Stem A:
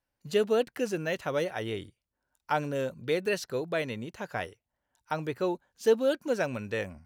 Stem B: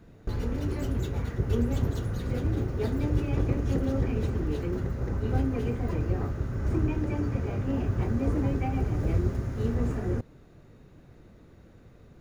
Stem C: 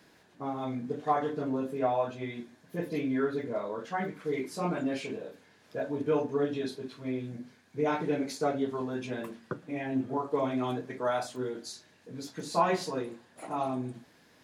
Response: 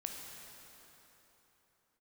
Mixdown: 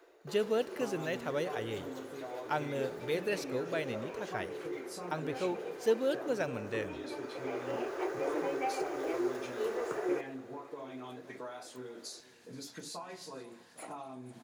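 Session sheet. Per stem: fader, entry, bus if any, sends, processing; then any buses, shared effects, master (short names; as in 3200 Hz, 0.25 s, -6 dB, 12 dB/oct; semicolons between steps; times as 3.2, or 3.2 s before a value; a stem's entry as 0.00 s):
-6.5 dB, 0.00 s, send -12.5 dB, no echo send, dry
0.0 dB, 0.00 s, send -8 dB, no echo send, elliptic high-pass 350 Hz, stop band 40 dB; auto duck -17 dB, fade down 0.45 s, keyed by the first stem
-1.5 dB, 0.40 s, send -16 dB, echo send -19 dB, tilt +1.5 dB/oct; compressor 12:1, threshold -41 dBFS, peak gain reduction 21 dB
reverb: on, pre-delay 12 ms
echo: echo 0.478 s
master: dry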